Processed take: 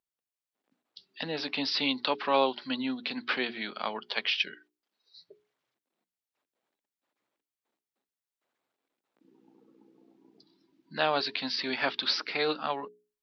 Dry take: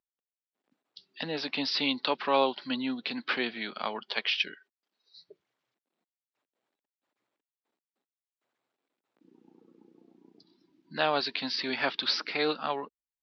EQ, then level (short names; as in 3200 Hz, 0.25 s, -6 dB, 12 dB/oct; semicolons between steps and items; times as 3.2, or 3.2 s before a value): notches 60/120/180/240/300/360/420 Hz; 0.0 dB